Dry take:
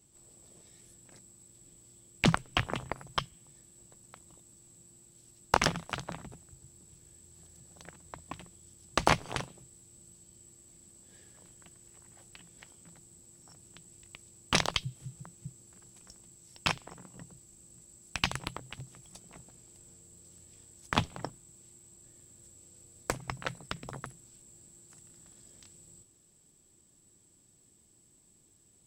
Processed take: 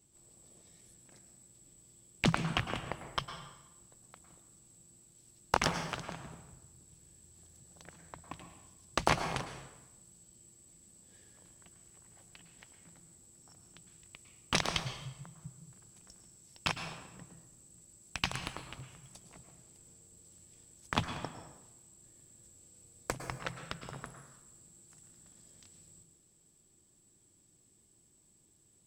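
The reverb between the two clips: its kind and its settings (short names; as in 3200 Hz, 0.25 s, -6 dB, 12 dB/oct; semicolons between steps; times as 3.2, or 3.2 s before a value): plate-style reverb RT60 0.98 s, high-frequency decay 0.8×, pre-delay 95 ms, DRR 7.5 dB; gain -3.5 dB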